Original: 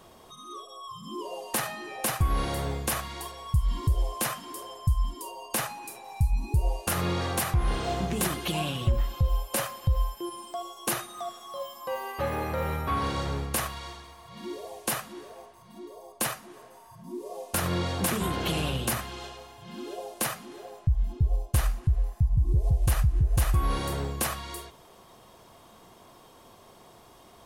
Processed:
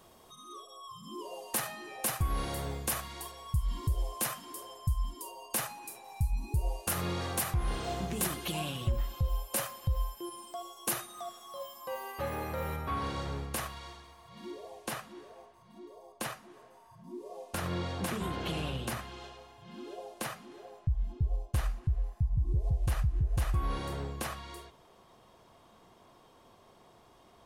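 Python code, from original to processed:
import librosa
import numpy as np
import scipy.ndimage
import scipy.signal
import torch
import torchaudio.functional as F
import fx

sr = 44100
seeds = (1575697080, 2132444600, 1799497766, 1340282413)

y = fx.high_shelf(x, sr, hz=7300.0, db=fx.steps((0.0, 5.5), (12.75, -3.0), (14.5, -9.5)))
y = y * 10.0 ** (-6.0 / 20.0)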